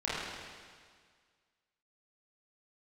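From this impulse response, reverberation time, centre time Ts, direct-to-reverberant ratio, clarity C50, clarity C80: 1.8 s, 129 ms, −10.0 dB, −3.5 dB, −0.5 dB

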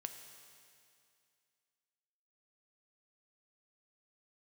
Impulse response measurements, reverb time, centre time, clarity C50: 2.4 s, 37 ms, 7.5 dB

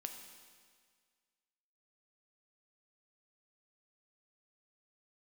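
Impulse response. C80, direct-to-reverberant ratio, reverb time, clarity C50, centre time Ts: 7.5 dB, 4.0 dB, 1.8 s, 6.0 dB, 38 ms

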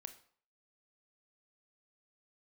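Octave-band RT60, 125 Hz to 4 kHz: 0.45, 0.50, 0.50, 0.55, 0.45, 0.40 seconds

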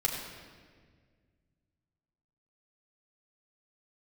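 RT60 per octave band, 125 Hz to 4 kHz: 2.9, 2.4, 2.0, 1.5, 1.6, 1.3 seconds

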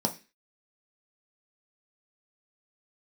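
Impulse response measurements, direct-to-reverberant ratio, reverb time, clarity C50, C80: 3.0 dB, 0.30 s, 15.0 dB, 21.5 dB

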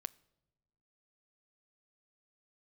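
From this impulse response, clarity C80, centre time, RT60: 26.5 dB, 1 ms, non-exponential decay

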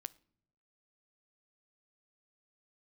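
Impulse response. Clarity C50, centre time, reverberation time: 22.5 dB, 1 ms, non-exponential decay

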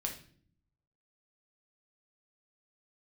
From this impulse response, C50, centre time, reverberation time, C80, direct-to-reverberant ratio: 8.0 dB, 19 ms, 0.50 s, 13.5 dB, 1.0 dB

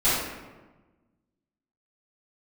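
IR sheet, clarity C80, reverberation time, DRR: 2.0 dB, 1.2 s, −15.0 dB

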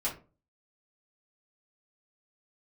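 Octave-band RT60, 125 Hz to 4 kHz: 0.50, 0.45, 0.40, 0.30, 0.25, 0.20 seconds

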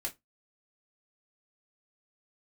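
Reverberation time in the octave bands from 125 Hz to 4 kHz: 0.20, 0.20, 0.20, 0.15, 0.15, 0.15 seconds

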